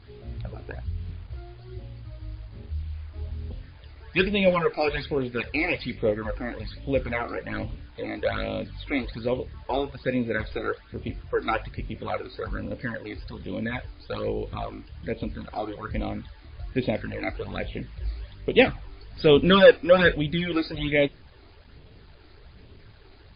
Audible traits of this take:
phaser sweep stages 12, 1.2 Hz, lowest notch 160–1,600 Hz
a quantiser's noise floor 10 bits, dither none
MP3

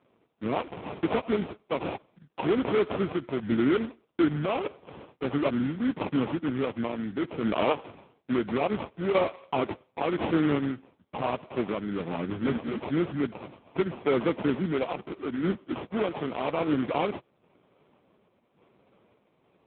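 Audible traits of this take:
aliases and images of a low sample rate 1,700 Hz, jitter 20%
sample-and-hold tremolo
AMR narrowband

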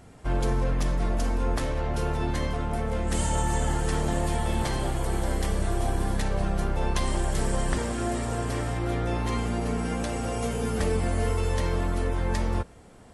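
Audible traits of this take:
background noise floor −49 dBFS
spectral slope −5.5 dB per octave

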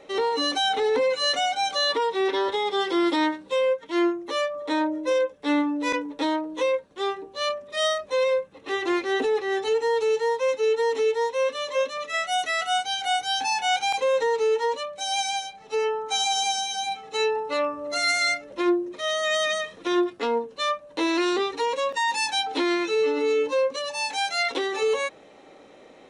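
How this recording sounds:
background noise floor −50 dBFS
spectral slope −1.0 dB per octave

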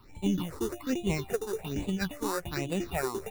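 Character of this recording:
aliases and images of a low sample rate 3,200 Hz, jitter 0%
phaser sweep stages 6, 1.2 Hz, lowest notch 160–1,500 Hz

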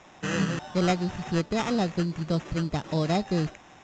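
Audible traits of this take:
aliases and images of a low sample rate 4,500 Hz, jitter 0%
A-law companding

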